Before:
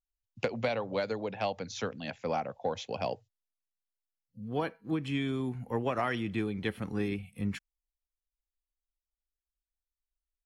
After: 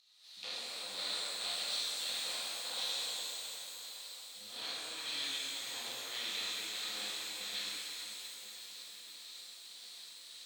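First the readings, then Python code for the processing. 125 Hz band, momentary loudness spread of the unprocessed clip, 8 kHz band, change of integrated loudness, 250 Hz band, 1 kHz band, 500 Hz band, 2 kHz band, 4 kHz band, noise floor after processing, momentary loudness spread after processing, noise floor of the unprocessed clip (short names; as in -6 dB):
under -30 dB, 5 LU, +12.5 dB, -4.5 dB, -25.0 dB, -12.5 dB, -19.0 dB, -3.5 dB, +11.0 dB, -53 dBFS, 12 LU, under -85 dBFS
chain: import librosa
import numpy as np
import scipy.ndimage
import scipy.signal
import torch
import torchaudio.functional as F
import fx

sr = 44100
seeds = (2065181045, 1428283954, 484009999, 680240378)

p1 = fx.bin_compress(x, sr, power=0.4)
p2 = fx.quant_dither(p1, sr, seeds[0], bits=6, dither='triangular')
p3 = p1 + (p2 * 10.0 ** (-12.0 / 20.0))
p4 = fx.volume_shaper(p3, sr, bpm=102, per_beat=1, depth_db=-15, release_ms=234.0, shape='slow start')
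p5 = np.clip(p4, -10.0 ** (-20.0 / 20.0), 10.0 ** (-20.0 / 20.0))
p6 = fx.bandpass_q(p5, sr, hz=4000.0, q=6.9)
p7 = p6 + fx.echo_swing(p6, sr, ms=1400, ratio=3, feedback_pct=60, wet_db=-19, dry=0)
y = fx.rev_shimmer(p7, sr, seeds[1], rt60_s=3.3, semitones=12, shimmer_db=-8, drr_db=-10.0)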